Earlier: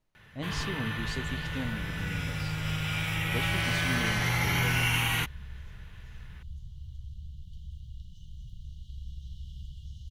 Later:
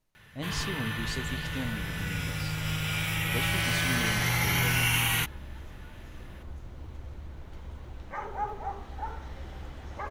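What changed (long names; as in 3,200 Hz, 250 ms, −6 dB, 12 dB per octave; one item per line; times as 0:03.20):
second sound: remove linear-phase brick-wall band-stop 190–2,800 Hz
master: add high-shelf EQ 6,300 Hz +8.5 dB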